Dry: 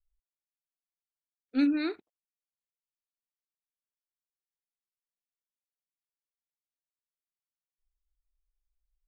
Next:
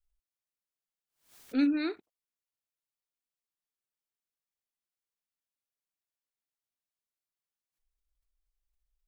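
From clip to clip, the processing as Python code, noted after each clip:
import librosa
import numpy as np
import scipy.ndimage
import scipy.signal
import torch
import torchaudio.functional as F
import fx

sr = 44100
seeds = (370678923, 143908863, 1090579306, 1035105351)

y = fx.pre_swell(x, sr, db_per_s=140.0)
y = F.gain(torch.from_numpy(y), -1.0).numpy()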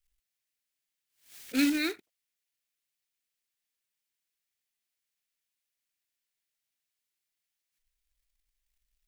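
y = fx.quant_float(x, sr, bits=2)
y = fx.high_shelf_res(y, sr, hz=1500.0, db=7.0, q=1.5)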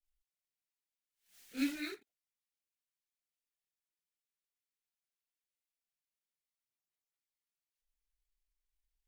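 y = fx.chorus_voices(x, sr, voices=6, hz=1.2, base_ms=27, depth_ms=3.8, mix_pct=65)
y = F.gain(torch.from_numpy(y), -8.5).numpy()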